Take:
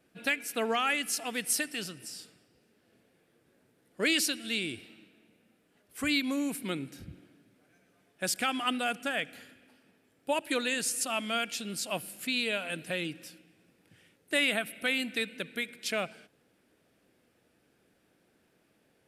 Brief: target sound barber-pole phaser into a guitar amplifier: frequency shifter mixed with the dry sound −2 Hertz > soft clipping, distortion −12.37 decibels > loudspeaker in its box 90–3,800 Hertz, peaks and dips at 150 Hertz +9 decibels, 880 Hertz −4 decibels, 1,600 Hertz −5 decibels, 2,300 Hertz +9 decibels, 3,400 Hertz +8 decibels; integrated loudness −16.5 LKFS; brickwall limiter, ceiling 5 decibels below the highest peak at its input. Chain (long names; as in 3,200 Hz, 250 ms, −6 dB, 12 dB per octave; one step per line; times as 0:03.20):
brickwall limiter −21.5 dBFS
frequency shifter mixed with the dry sound −2 Hz
soft clipping −31.5 dBFS
loudspeaker in its box 90–3,800 Hz, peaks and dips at 150 Hz +9 dB, 880 Hz −4 dB, 1,600 Hz −5 dB, 2,300 Hz +9 dB, 3,400 Hz +8 dB
level +19 dB